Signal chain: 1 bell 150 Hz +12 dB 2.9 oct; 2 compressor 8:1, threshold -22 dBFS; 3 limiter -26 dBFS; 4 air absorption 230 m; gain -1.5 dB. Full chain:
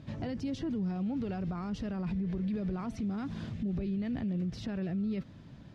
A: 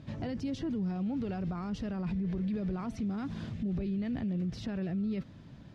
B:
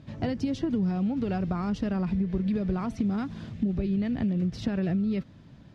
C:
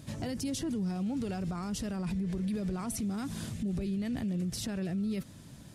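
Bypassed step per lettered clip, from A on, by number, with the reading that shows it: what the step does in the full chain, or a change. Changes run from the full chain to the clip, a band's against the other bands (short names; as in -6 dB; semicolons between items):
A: 2, mean gain reduction 3.0 dB; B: 3, mean gain reduction 4.5 dB; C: 4, 4 kHz band +6.5 dB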